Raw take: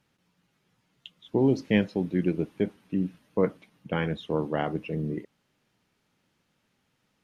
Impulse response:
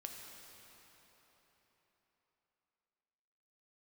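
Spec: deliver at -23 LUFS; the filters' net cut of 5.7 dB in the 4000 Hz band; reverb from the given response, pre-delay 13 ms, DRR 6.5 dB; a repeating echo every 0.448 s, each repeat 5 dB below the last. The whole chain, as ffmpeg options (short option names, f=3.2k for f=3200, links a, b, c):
-filter_complex "[0:a]equalizer=f=4k:t=o:g=-8.5,aecho=1:1:448|896|1344|1792|2240|2688|3136:0.562|0.315|0.176|0.0988|0.0553|0.031|0.0173,asplit=2[a][b];[1:a]atrim=start_sample=2205,adelay=13[c];[b][c]afir=irnorm=-1:irlink=0,volume=-3.5dB[d];[a][d]amix=inputs=2:normalize=0,volume=4.5dB"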